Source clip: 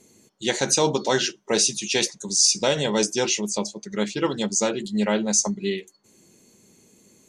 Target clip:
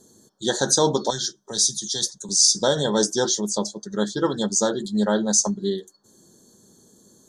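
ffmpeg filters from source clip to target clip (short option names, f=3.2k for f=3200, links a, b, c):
-filter_complex "[0:a]asettb=1/sr,asplit=3[a][b][c];[a]atrim=end=1.104[d];[b]atrim=start=1.1:end=2.29,asetpts=PTS-STARTPTS,afade=t=in:d=0.004:c=qsin,afade=t=out:st=1.186:d=0.004:c=qsin,acrossover=split=150|3000[e][f][g];[f]acompressor=threshold=-41dB:ratio=3[h];[e][h][g]amix=inputs=3:normalize=0[i];[c]atrim=start=2.286[j];[d][i]acrossfade=d=0.004:c1=hsin:c2=qsin[k];[k][j]acrossfade=d=0.004:c1=qsin:c2=hsin,asuperstop=centerf=2400:order=12:qfactor=1.7,volume=1.5dB"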